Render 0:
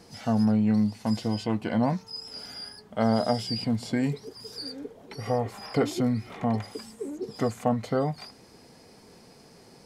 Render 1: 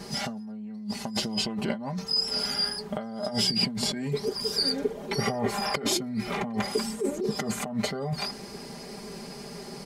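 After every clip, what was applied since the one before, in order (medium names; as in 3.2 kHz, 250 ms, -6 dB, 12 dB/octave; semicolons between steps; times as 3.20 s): comb 5 ms, depth 91%; compressor with a negative ratio -32 dBFS, ratio -1; trim +2 dB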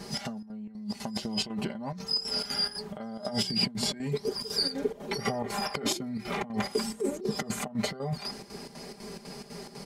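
square tremolo 4 Hz, depth 65%, duty 70%; trim -1.5 dB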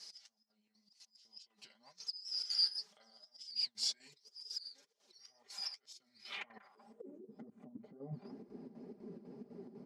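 slow attack 479 ms; band-pass sweep 5.3 kHz -> 280 Hz, 6.18–7.15 s; flange 2 Hz, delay 1.3 ms, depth 9.4 ms, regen +41%; trim +2.5 dB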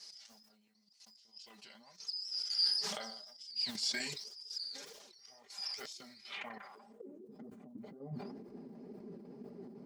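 decay stretcher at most 39 dB/s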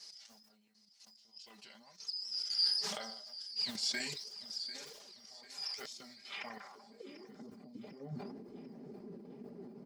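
feedback delay 745 ms, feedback 49%, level -17 dB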